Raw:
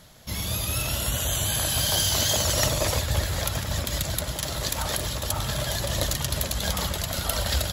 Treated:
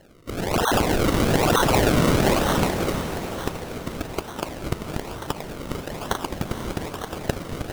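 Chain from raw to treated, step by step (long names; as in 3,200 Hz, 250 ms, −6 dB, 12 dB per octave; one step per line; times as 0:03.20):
RIAA equalisation recording
gate on every frequency bin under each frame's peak −10 dB strong
automatic gain control gain up to 6 dB
sample-and-hold swept by an LFO 36×, swing 100% 1.1 Hz
feedback delay with all-pass diffusion 477 ms, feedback 50%, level −9.5 dB
level −4.5 dB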